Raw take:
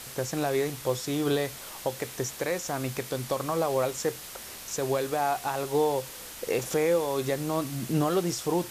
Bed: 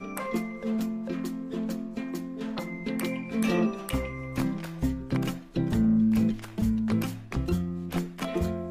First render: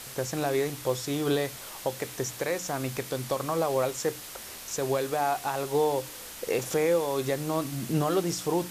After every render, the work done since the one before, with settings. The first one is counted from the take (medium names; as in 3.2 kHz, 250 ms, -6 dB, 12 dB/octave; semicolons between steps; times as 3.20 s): de-hum 60 Hz, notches 5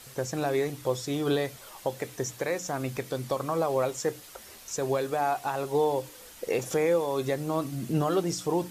noise reduction 8 dB, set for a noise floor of -42 dBFS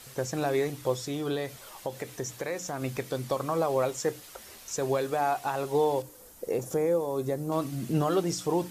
0.94–2.82 s: compression 1.5:1, threshold -34 dBFS; 6.02–7.52 s: peaking EQ 2.8 kHz -12.5 dB 2.3 oct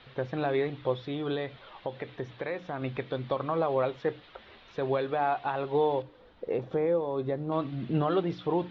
elliptic low-pass 3.7 kHz, stop band 60 dB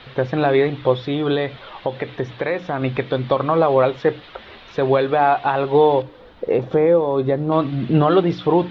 trim +12 dB